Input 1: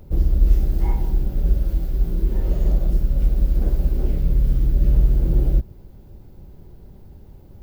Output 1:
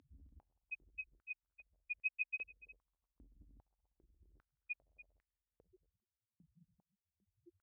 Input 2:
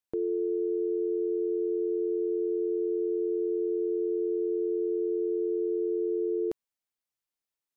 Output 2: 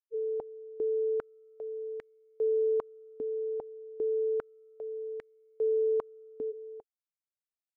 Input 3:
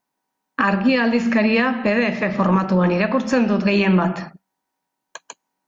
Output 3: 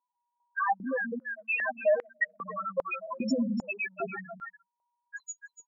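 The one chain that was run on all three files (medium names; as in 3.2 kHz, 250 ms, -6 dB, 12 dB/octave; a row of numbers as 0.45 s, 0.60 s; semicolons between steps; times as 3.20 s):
rattle on loud lows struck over -24 dBFS, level -15 dBFS; tilt EQ +3 dB/octave; loudest bins only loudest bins 1; peak limiter -32 dBFS; delay 290 ms -12.5 dB; compression 2:1, threshold -40 dBFS; low-pass 4.9 kHz 12 dB/octave; treble shelf 3.3 kHz +9.5 dB; step-sequenced high-pass 2.5 Hz 270–1900 Hz; trim +6 dB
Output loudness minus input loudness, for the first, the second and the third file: -22.5 LU, -3.0 LU, -13.5 LU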